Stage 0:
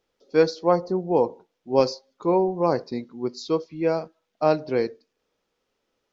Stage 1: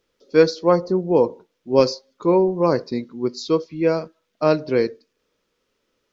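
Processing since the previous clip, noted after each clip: peaking EQ 770 Hz -10 dB 0.37 oct; trim +5 dB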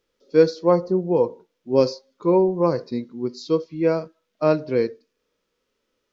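harmonic-percussive split harmonic +8 dB; trim -8.5 dB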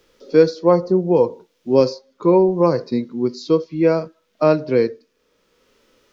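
three bands compressed up and down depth 40%; trim +4 dB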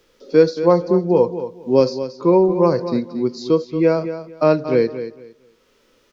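feedback delay 228 ms, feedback 21%, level -11.5 dB

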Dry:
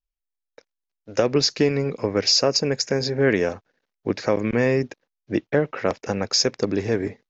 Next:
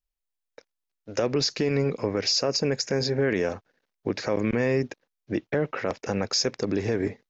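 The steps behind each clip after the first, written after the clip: peak limiter -15 dBFS, peak gain reduction 8 dB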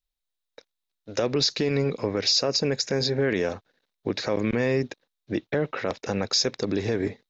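peaking EQ 3.8 kHz +10 dB 0.37 oct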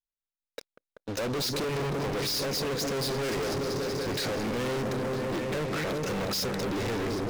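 delay with an opening low-pass 192 ms, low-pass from 400 Hz, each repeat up 1 oct, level -6 dB; waveshaping leveller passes 5; saturation -22 dBFS, distortion -12 dB; trim -7 dB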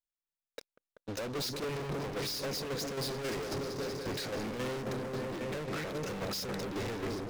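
tremolo saw down 3.7 Hz, depth 50%; trim -4 dB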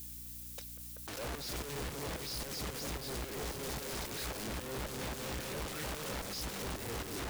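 zero-crossing glitches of -41.5 dBFS; hum 60 Hz, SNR 17 dB; integer overflow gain 38 dB; trim +1.5 dB

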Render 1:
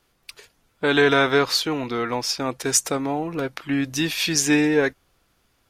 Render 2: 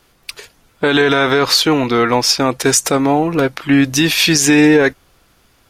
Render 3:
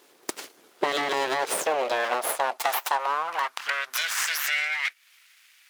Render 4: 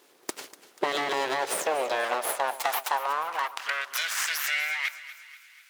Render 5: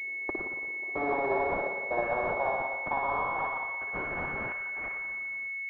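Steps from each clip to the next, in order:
loudness maximiser +12.5 dB; trim -1 dB
compression 6:1, threshold -21 dBFS, peak gain reduction 13.5 dB; full-wave rectifier; high-pass sweep 360 Hz -> 2.1 kHz, 0.95–4.87 s
two-band feedback delay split 1.1 kHz, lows 119 ms, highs 243 ms, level -15 dB; trim -2 dB
trance gate "xxxxxx.." 126 bpm -24 dB; reverberation RT60 1.3 s, pre-delay 56 ms, DRR -1.5 dB; class-D stage that switches slowly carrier 2.2 kHz; trim -2 dB

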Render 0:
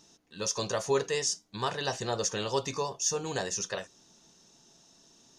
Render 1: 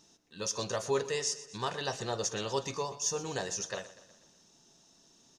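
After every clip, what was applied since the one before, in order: feedback delay 122 ms, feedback 54%, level -16 dB; trim -3 dB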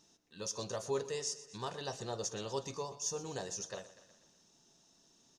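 dynamic bell 2 kHz, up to -6 dB, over -51 dBFS, Q 0.87; trim -4.5 dB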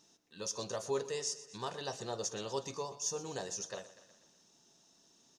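bass shelf 89 Hz -10 dB; trim +1 dB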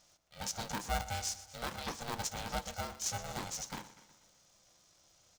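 polarity switched at an audio rate 350 Hz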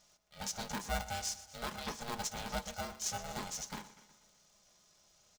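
comb 4.8 ms, depth 41%; trim -1.5 dB

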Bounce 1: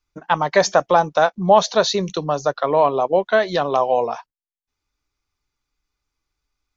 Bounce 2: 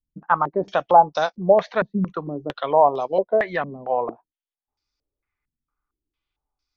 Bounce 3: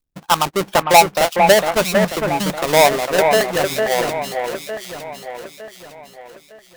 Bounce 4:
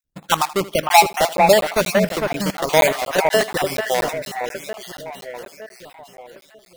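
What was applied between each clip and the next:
step-sequenced low-pass 4.4 Hz 210–5000 Hz; trim -6.5 dB
square wave that keeps the level; on a send: echo whose repeats swap between lows and highs 454 ms, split 2.5 kHz, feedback 63%, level -4 dB
random holes in the spectrogram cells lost 27%; thinning echo 79 ms, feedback 27%, high-pass 220 Hz, level -17 dB; crackling interface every 0.24 s, samples 512, zero, from 0.89 s; trim -1 dB

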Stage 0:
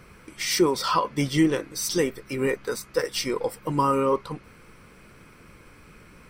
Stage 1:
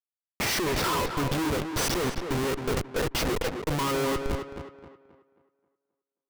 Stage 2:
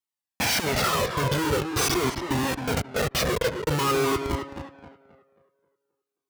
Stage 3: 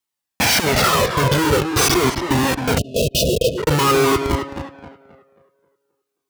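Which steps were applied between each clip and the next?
Schmitt trigger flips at -28 dBFS; tape echo 266 ms, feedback 40%, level -5 dB, low-pass 2.8 kHz
high-pass 77 Hz; Shepard-style flanger falling 0.46 Hz; trim +8 dB
spectral selection erased 2.78–3.58 s, 690–2500 Hz; trim +8 dB

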